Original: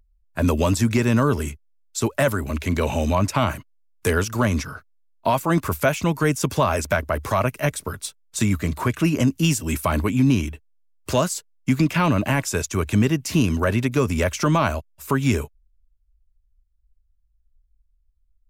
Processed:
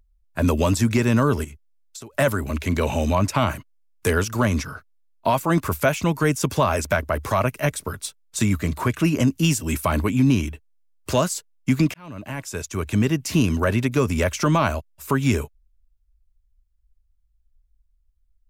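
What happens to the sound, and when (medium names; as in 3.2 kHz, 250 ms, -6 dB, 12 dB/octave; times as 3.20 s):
1.44–2.14 s: compression 16:1, threshold -34 dBFS
11.94–13.22 s: fade in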